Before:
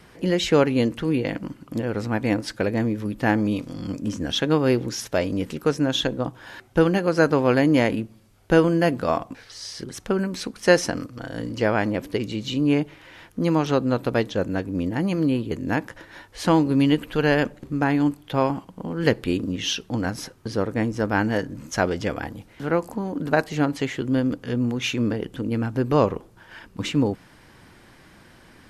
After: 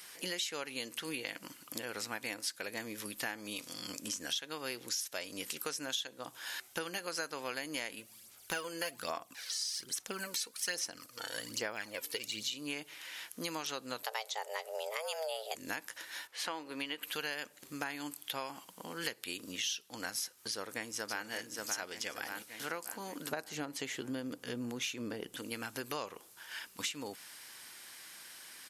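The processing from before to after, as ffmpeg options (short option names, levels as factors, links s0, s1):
-filter_complex "[0:a]asplit=3[s0][s1][s2];[s0]afade=t=out:st=7.99:d=0.02[s3];[s1]aphaser=in_gain=1:out_gain=1:delay=2.3:decay=0.55:speed=1.2:type=sinusoidal,afade=t=in:st=7.99:d=0.02,afade=t=out:st=12.42:d=0.02[s4];[s2]afade=t=in:st=12.42:d=0.02[s5];[s3][s4][s5]amix=inputs=3:normalize=0,asplit=3[s6][s7][s8];[s6]afade=t=out:st=14.02:d=0.02[s9];[s7]afreqshift=320,afade=t=in:st=14.02:d=0.02,afade=t=out:st=15.54:d=0.02[s10];[s8]afade=t=in:st=15.54:d=0.02[s11];[s9][s10][s11]amix=inputs=3:normalize=0,asettb=1/sr,asplit=3[s12][s13][s14];[s12]atrim=end=16.274[s15];[s13]atrim=start=16.27:end=17.03,asetpts=PTS-STARTPTS,afade=t=in:d=0.004:c=qsin,afade=t=out:st=0.756:d=0.004:c=qsin,bass=f=250:g=-12,treble=f=4000:g=-15[s16];[s14]atrim=start=17.026[s17];[s15][s16]acrossfade=d=0.004:c1=hsin:c2=qsin[s18];[s18][s17]acrossfade=d=0.004:c1=qsin:c2=hsin,asplit=2[s19][s20];[s20]afade=t=in:st=20.5:d=0.01,afade=t=out:st=21.26:d=0.01,aecho=0:1:580|1160|1740|2320|2900|3480:0.501187|0.250594|0.125297|0.0626484|0.0313242|0.0156621[s21];[s19][s21]amix=inputs=2:normalize=0,asettb=1/sr,asplit=3[s22][s23][s24];[s22]atrim=end=23.314[s25];[s23]atrim=start=23.31:end=25.37,asetpts=PTS-STARTPTS,afade=t=in:d=0.004:c=qsin,afade=t=out:st=2.056:d=0.004:c=qsin,tiltshelf=f=850:g=6.5[s26];[s24]atrim=start=25.366[s27];[s25][s26]acrossfade=d=0.004:c1=hsin:c2=qsin[s28];[s28][s27]acrossfade=d=0.004:c1=qsin:c2=hsin,aderivative,acompressor=threshold=0.00501:ratio=6,volume=3.35"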